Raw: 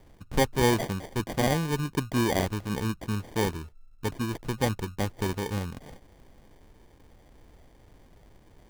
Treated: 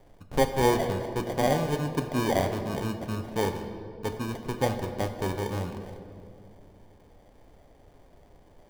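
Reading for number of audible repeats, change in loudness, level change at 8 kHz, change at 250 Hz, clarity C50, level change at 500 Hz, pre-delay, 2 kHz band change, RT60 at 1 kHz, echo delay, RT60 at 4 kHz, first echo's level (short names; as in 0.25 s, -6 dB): none, 0.0 dB, -3.0 dB, -1.0 dB, 8.0 dB, +2.5 dB, 7 ms, -2.0 dB, 2.0 s, none, 1.5 s, none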